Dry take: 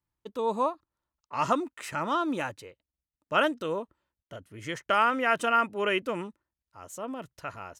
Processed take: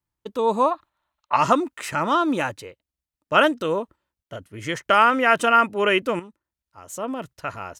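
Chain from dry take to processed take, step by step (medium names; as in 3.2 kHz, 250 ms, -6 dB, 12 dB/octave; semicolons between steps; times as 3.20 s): 0.71–1.36 s: time-frequency box 560–4300 Hz +11 dB; gate -50 dBFS, range -6 dB; 6.19–6.88 s: compression 2.5:1, threshold -50 dBFS, peak gain reduction 11.5 dB; trim +7.5 dB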